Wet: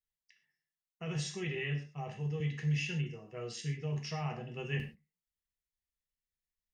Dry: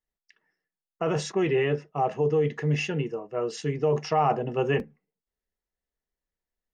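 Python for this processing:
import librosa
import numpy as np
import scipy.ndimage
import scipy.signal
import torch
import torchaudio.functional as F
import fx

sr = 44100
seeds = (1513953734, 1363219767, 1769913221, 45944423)

y = fx.band_shelf(x, sr, hz=590.0, db=-14.5, octaves=2.8)
y = fx.rev_gated(y, sr, seeds[0], gate_ms=160, shape='falling', drr_db=2.0)
y = fx.band_squash(y, sr, depth_pct=40, at=(2.4, 3.53))
y = y * 10.0 ** (-6.5 / 20.0)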